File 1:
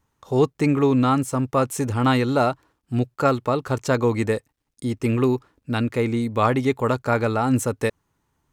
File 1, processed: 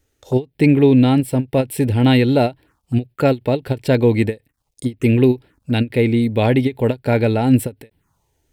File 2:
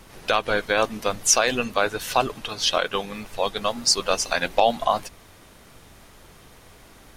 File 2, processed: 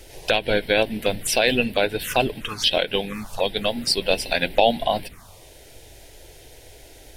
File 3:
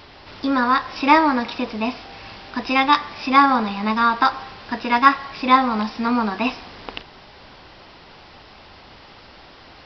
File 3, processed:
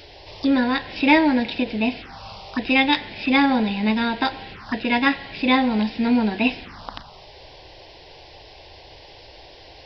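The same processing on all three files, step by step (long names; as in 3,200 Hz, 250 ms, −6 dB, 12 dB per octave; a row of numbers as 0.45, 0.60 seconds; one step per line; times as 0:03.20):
phaser swept by the level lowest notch 170 Hz, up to 1,200 Hz, full sweep at −23.5 dBFS
every ending faded ahead of time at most 370 dB per second
normalise the peak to −3 dBFS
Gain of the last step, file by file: +7.5, +5.5, +3.5 decibels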